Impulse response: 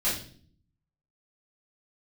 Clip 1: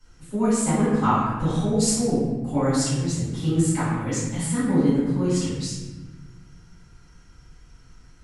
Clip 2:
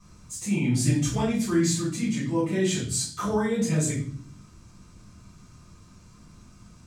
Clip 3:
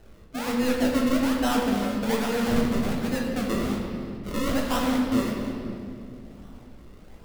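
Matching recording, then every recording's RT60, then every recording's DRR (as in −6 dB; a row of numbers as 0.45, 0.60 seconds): 2; 1.3, 0.50, 2.4 seconds; −14.5, −11.5, −2.0 decibels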